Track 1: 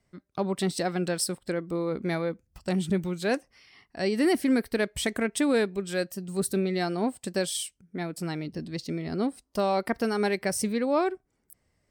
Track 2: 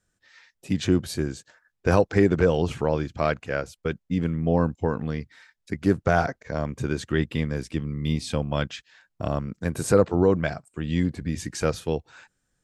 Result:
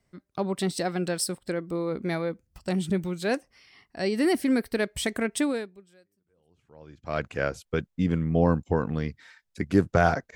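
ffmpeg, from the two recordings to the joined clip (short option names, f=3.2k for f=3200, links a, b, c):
-filter_complex "[0:a]apad=whole_dur=10.35,atrim=end=10.35,atrim=end=7.26,asetpts=PTS-STARTPTS[a];[1:a]atrim=start=1.56:end=6.47,asetpts=PTS-STARTPTS[b];[a][b]acrossfade=d=1.82:c1=exp:c2=exp"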